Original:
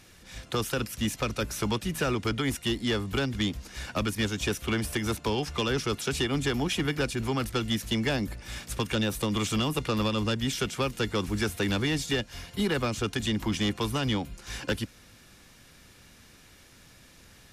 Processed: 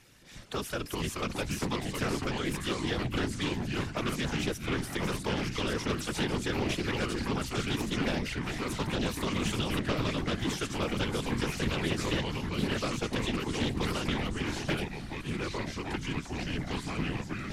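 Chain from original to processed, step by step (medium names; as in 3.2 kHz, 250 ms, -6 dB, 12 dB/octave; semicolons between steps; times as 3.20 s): ever faster or slower copies 291 ms, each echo -3 st, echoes 3; whisper effect; loudspeaker Doppler distortion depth 0.3 ms; trim -5 dB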